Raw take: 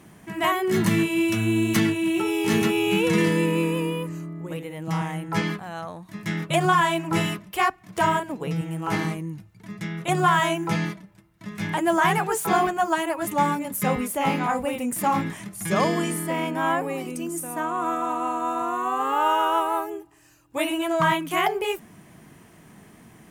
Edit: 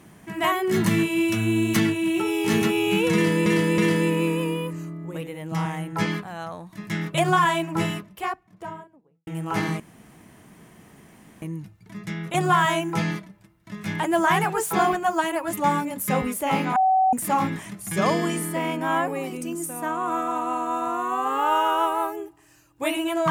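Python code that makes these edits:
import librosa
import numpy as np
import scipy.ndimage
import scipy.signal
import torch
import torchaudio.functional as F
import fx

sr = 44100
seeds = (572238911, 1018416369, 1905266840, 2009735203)

y = fx.studio_fade_out(x, sr, start_s=6.79, length_s=1.84)
y = fx.edit(y, sr, fx.repeat(start_s=3.14, length_s=0.32, count=3),
    fx.insert_room_tone(at_s=9.16, length_s=1.62),
    fx.bleep(start_s=14.5, length_s=0.37, hz=757.0, db=-15.5), tone=tone)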